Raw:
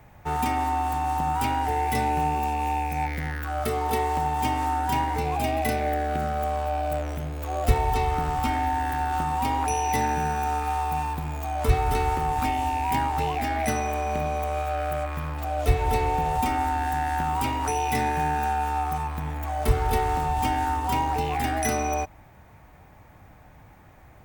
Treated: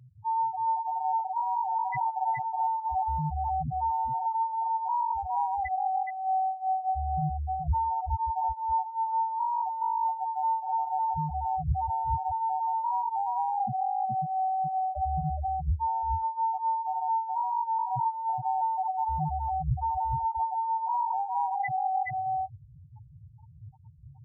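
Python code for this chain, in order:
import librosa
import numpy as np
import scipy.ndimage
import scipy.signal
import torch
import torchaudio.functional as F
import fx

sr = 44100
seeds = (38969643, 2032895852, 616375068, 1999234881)

p1 = fx.graphic_eq(x, sr, hz=(125, 500, 1000, 2000), db=(8, -5, 8, 6))
p2 = fx.spec_topn(p1, sr, count=1)
p3 = fx.dereverb_blind(p2, sr, rt60_s=0.59)
p4 = p3 + fx.echo_single(p3, sr, ms=421, db=-4.5, dry=0)
p5 = fx.rider(p4, sr, range_db=10, speed_s=0.5)
y = scipy.signal.sosfilt(scipy.signal.butter(2, 62.0, 'highpass', fs=sr, output='sos'), p5)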